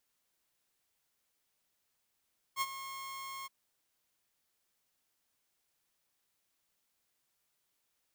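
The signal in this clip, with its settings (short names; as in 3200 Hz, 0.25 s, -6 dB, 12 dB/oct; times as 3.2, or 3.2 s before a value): ADSR saw 1080 Hz, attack 53 ms, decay 41 ms, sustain -12.5 dB, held 0.90 s, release 22 ms -26.5 dBFS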